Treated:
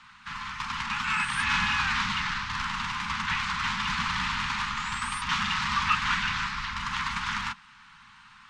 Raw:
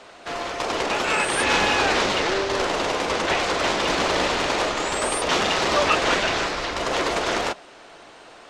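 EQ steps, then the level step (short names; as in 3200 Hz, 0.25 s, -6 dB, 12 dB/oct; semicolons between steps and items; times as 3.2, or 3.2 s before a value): inverse Chebyshev band-stop 310–690 Hz, stop band 40 dB; LPF 2400 Hz 6 dB/oct; -1.5 dB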